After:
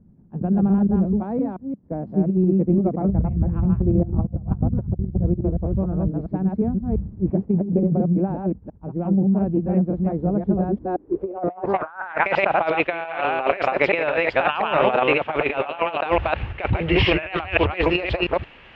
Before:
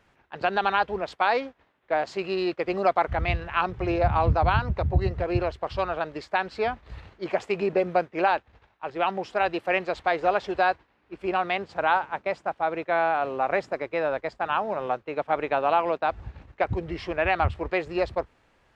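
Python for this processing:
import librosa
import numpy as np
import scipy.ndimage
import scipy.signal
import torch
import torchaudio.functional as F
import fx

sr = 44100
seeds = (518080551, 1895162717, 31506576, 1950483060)

y = fx.reverse_delay(x, sr, ms=174, wet_db=-2.0)
y = fx.filter_sweep_lowpass(y, sr, from_hz=200.0, to_hz=2800.0, start_s=10.68, end_s=12.38, q=3.7)
y = fx.over_compress(y, sr, threshold_db=-27.0, ratio=-0.5)
y = y * 10.0 ** (7.5 / 20.0)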